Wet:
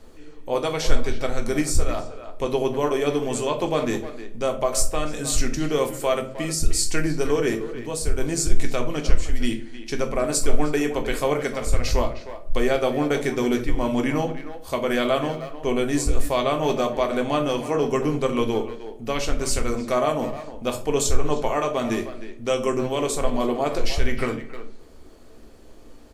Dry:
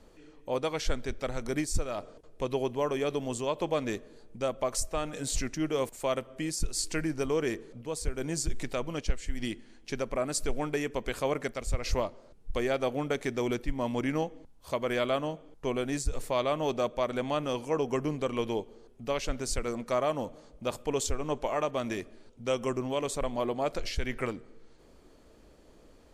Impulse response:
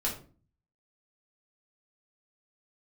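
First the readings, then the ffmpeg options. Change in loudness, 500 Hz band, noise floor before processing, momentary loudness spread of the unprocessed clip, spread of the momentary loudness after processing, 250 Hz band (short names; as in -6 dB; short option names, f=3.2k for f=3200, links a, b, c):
+7.5 dB, +7.5 dB, -57 dBFS, 7 LU, 7 LU, +8.5 dB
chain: -filter_complex "[0:a]asplit=2[a][b];[b]adelay=310,highpass=300,lowpass=3.4k,asoftclip=type=hard:threshold=-25.5dB,volume=-11dB[c];[a][c]amix=inputs=2:normalize=0,asplit=2[d][e];[1:a]atrim=start_sample=2205,highshelf=f=8.2k:g=10.5[f];[e][f]afir=irnorm=-1:irlink=0,volume=-5dB[g];[d][g]amix=inputs=2:normalize=0,volume=2dB"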